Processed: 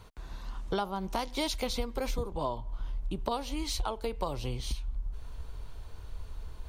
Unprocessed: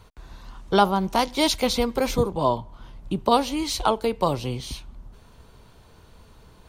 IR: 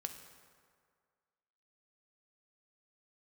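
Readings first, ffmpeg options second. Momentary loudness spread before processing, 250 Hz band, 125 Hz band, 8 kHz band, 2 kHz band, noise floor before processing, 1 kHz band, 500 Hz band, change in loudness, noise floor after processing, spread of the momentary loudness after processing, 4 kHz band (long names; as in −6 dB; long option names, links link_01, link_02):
10 LU, −12.0 dB, −7.0 dB, −9.0 dB, −10.5 dB, −52 dBFS, −13.0 dB, −12.0 dB, −12.0 dB, −47 dBFS, 14 LU, −10.0 dB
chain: -af "asubboost=boost=8:cutoff=61,acompressor=threshold=-29dB:ratio=4,volume=-1.5dB"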